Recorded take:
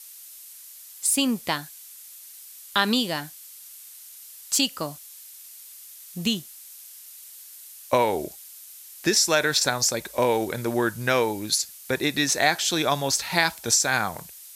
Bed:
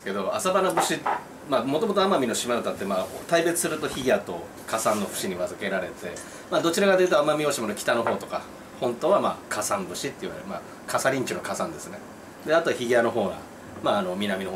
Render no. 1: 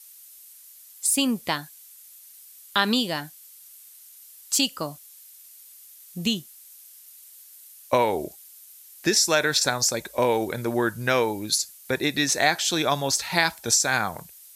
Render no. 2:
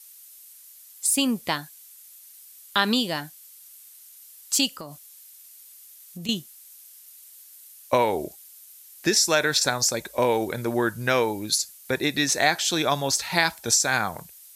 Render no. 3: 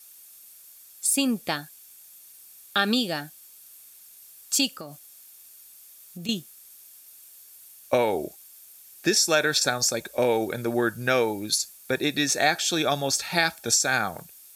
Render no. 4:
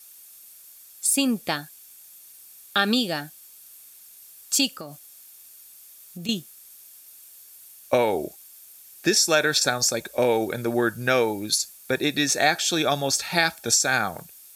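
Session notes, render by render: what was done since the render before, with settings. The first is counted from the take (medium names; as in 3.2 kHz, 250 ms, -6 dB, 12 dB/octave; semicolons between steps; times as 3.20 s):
noise reduction 6 dB, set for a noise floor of -45 dBFS
4.68–6.29 s: compression 4:1, threshold -34 dBFS
comb of notches 1 kHz; word length cut 10-bit, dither none
trim +1.5 dB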